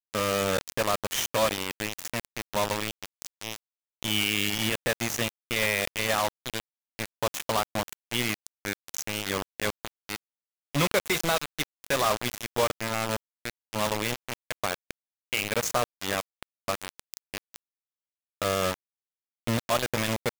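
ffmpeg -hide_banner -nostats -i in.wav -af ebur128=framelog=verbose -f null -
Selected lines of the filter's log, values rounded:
Integrated loudness:
  I:         -28.9 LUFS
  Threshold: -39.4 LUFS
Loudness range:
  LRA:         4.8 LU
  Threshold: -49.8 LUFS
  LRA low:   -32.5 LUFS
  LRA high:  -27.6 LUFS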